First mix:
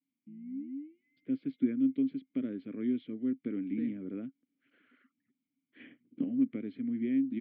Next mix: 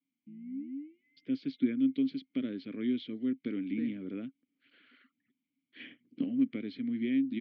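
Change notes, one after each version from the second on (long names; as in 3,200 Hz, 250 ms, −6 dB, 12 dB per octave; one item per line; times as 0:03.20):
first voice: remove low-pass filter 2,300 Hz 12 dB per octave
master: add high-shelf EQ 2,100 Hz +8 dB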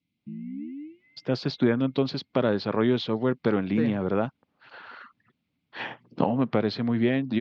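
master: remove formant filter i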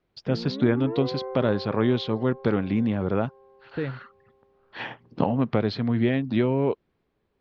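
first voice: entry −1.00 s
background: remove linear-phase brick-wall band-stop 320–2,000 Hz
master: remove high-pass filter 140 Hz 12 dB per octave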